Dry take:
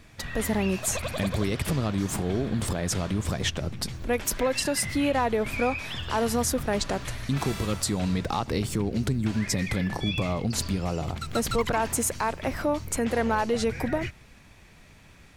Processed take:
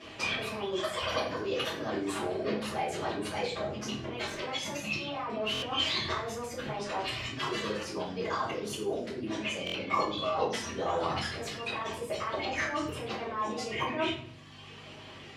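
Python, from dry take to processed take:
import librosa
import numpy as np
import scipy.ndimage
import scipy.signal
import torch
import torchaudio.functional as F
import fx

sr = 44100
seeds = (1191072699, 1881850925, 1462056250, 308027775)

p1 = fx.dereverb_blind(x, sr, rt60_s=1.1)
p2 = fx.over_compress(p1, sr, threshold_db=-36.0, ratio=-1.0)
p3 = fx.formant_shift(p2, sr, semitones=4)
p4 = fx.add_hum(p3, sr, base_hz=50, snr_db=11)
p5 = fx.bandpass_edges(p4, sr, low_hz=290.0, high_hz=4800.0)
p6 = p5 + fx.echo_feedback(p5, sr, ms=98, feedback_pct=48, wet_db=-20.0, dry=0)
p7 = fx.room_shoebox(p6, sr, seeds[0], volume_m3=59.0, walls='mixed', distance_m=2.7)
p8 = fx.buffer_glitch(p7, sr, at_s=(5.53, 9.65), block=1024, repeats=3)
y = p8 * librosa.db_to_amplitude(-7.0)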